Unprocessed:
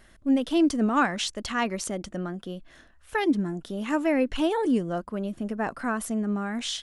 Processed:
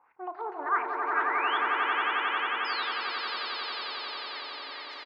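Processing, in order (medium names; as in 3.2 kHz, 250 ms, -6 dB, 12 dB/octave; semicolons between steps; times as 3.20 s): single-diode clipper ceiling -21.5 dBFS; high-pass 60 Hz; bass shelf 350 Hz -6 dB; in parallel at -2 dB: peak limiter -26 dBFS, peak gain reduction 11.5 dB; on the sum: LFO low-pass saw up 5.4 Hz 630–1700 Hz; painted sound fall, 3.57–5.53 s, 260–3900 Hz -31 dBFS; band-pass sweep 820 Hz -> 4.5 kHz, 0.83–4.53 s; painted sound rise, 1.49–2.13 s, 910–2600 Hz -32 dBFS; distance through air 180 m; doubling 44 ms -11 dB; on a send: echo with a slow build-up 121 ms, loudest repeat 8, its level -4.5 dB; on the sum: speed mistake 33 rpm record played at 45 rpm; trim -3.5 dB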